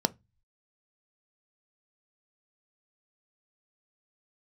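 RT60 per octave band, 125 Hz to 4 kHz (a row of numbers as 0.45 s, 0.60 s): 0.60 s, 0.30 s, 0.20 s, 0.20 s, 0.20 s, 0.20 s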